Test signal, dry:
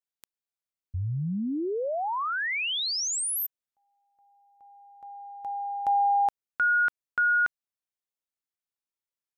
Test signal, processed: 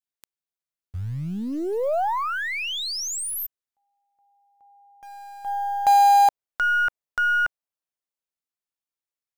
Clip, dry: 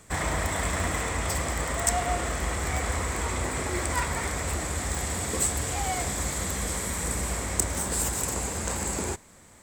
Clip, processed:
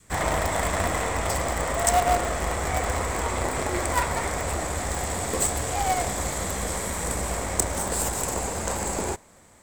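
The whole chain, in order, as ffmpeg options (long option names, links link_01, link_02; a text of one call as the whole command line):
ffmpeg -i in.wav -filter_complex "[0:a]adynamicequalizer=threshold=0.00708:dfrequency=680:dqfactor=0.94:tfrequency=680:tqfactor=0.94:attack=5:release=100:ratio=0.375:range=3.5:mode=boostabove:tftype=bell,asplit=2[link_01][link_02];[link_02]acrusher=bits=4:dc=4:mix=0:aa=0.000001,volume=-6.5dB[link_03];[link_01][link_03]amix=inputs=2:normalize=0,volume=-2dB" out.wav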